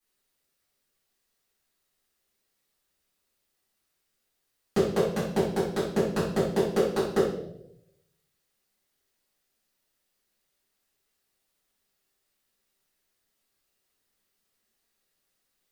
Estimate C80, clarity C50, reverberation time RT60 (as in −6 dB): 7.0 dB, 3.0 dB, 0.85 s